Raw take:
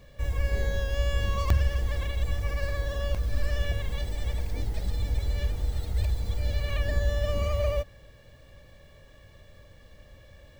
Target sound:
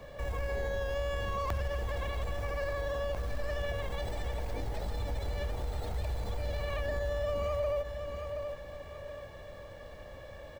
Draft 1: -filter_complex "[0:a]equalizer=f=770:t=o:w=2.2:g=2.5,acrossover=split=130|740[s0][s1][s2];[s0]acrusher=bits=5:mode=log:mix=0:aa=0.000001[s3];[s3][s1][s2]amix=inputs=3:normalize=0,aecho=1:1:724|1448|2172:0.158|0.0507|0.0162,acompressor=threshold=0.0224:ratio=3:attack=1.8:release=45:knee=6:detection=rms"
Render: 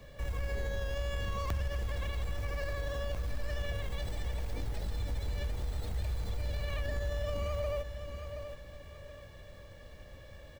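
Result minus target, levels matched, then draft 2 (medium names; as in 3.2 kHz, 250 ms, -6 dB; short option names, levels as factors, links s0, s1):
1 kHz band -4.0 dB
-filter_complex "[0:a]equalizer=f=770:t=o:w=2.2:g=12,acrossover=split=130|740[s0][s1][s2];[s0]acrusher=bits=5:mode=log:mix=0:aa=0.000001[s3];[s3][s1][s2]amix=inputs=3:normalize=0,aecho=1:1:724|1448|2172:0.158|0.0507|0.0162,acompressor=threshold=0.0224:ratio=3:attack=1.8:release=45:knee=6:detection=rms"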